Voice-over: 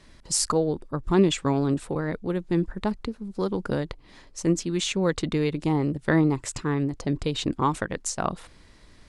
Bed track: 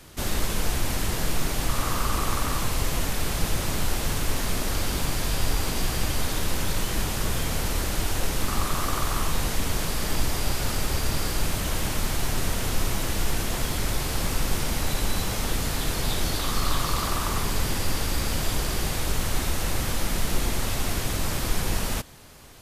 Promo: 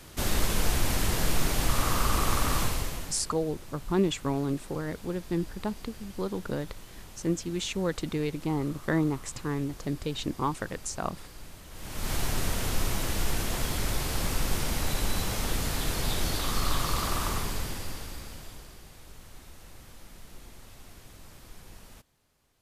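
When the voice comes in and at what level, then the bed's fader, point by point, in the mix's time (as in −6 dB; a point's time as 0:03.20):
2.80 s, −5.5 dB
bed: 0:02.62 −0.5 dB
0:03.37 −20.5 dB
0:11.69 −20.5 dB
0:12.12 −3 dB
0:17.27 −3 dB
0:18.83 −23 dB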